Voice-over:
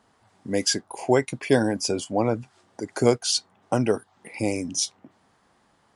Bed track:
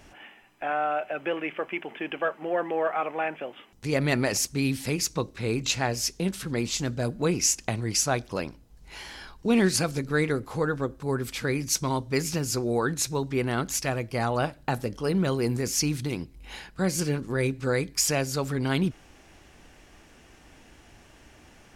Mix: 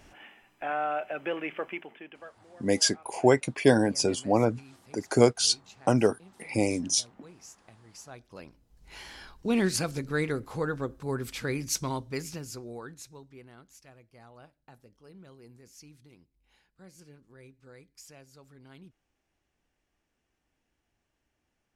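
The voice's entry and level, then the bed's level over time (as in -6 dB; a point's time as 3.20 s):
2.15 s, -0.5 dB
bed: 1.68 s -3 dB
2.49 s -26.5 dB
7.84 s -26.5 dB
8.91 s -4 dB
11.83 s -4 dB
13.64 s -26.5 dB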